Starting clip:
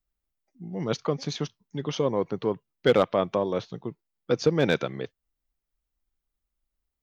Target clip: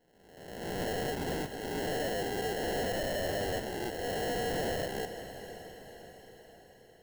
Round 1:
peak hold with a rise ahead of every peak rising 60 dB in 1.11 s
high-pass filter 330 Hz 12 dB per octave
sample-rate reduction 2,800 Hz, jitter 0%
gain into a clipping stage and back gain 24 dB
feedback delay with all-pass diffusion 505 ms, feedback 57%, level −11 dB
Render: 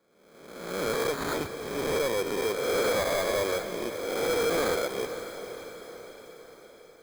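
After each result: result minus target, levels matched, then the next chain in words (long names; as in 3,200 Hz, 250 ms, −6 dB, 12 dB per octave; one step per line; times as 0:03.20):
sample-rate reduction: distortion −15 dB; gain into a clipping stage and back: distortion −4 dB
peak hold with a rise ahead of every peak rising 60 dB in 1.11 s
high-pass filter 330 Hz 12 dB per octave
sample-rate reduction 1,200 Hz, jitter 0%
gain into a clipping stage and back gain 24 dB
feedback delay with all-pass diffusion 505 ms, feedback 57%, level −11 dB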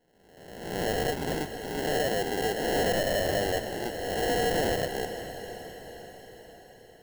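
gain into a clipping stage and back: distortion −4 dB
peak hold with a rise ahead of every peak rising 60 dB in 1.11 s
high-pass filter 330 Hz 12 dB per octave
sample-rate reduction 1,200 Hz, jitter 0%
gain into a clipping stage and back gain 32 dB
feedback delay with all-pass diffusion 505 ms, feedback 57%, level −11 dB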